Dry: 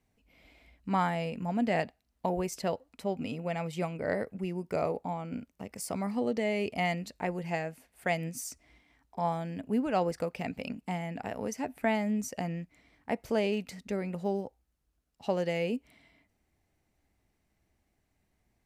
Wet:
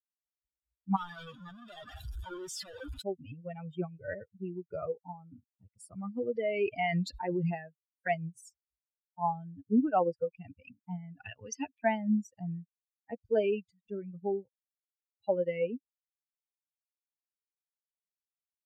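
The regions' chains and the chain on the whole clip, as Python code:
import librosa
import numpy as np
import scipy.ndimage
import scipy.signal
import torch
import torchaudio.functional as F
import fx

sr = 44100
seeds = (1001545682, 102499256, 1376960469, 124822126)

y = fx.chain(x, sr, fx.clip_1bit(),
    fx.low_shelf(hz=160.0, db=-10.5), at=(0.96, 3.02))
y = fx.chain(y, sr, fx.low_shelf(hz=110.0, db=-10.0),
    fx.env_flatten(amount_pct=70), at=(6.35, 7.54))
y = fx.chain(y, sr, fx.highpass(hz=54.0, slope=12),
    fx.peak_eq(hz=3500.0, db=13.0, octaves=2.0), at=(11.2, 11.84))
y = fx.bin_expand(y, sr, power=3.0)
y = scipy.signal.sosfilt(scipy.signal.butter(2, 8500.0, 'lowpass', fs=sr, output='sos'), y)
y = fx.high_shelf(y, sr, hz=2300.0, db=-10.0)
y = y * librosa.db_to_amplitude(7.0)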